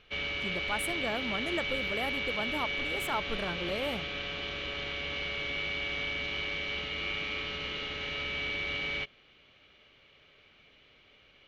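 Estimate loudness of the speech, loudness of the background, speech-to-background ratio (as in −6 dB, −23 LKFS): −37.0 LKFS, −33.0 LKFS, −4.0 dB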